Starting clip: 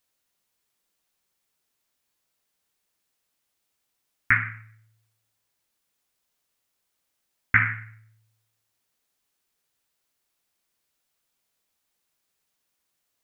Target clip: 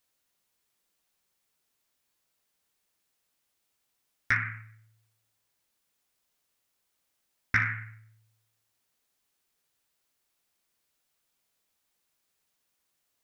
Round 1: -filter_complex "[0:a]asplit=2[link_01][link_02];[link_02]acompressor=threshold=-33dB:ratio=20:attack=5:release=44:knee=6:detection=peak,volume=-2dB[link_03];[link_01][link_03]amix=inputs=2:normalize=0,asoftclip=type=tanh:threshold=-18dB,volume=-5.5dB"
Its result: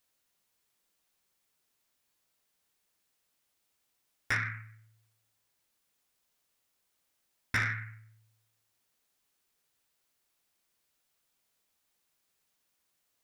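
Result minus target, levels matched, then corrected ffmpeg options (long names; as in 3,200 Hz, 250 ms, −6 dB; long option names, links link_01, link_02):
soft clipping: distortion +11 dB
-filter_complex "[0:a]asplit=2[link_01][link_02];[link_02]acompressor=threshold=-33dB:ratio=20:attack=5:release=44:knee=6:detection=peak,volume=-2dB[link_03];[link_01][link_03]amix=inputs=2:normalize=0,asoftclip=type=tanh:threshold=-7dB,volume=-5.5dB"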